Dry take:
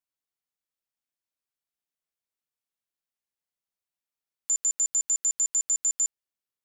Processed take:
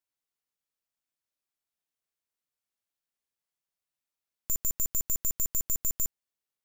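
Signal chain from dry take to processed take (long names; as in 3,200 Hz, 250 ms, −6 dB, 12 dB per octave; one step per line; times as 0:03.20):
wavefolder on the positive side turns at −31 dBFS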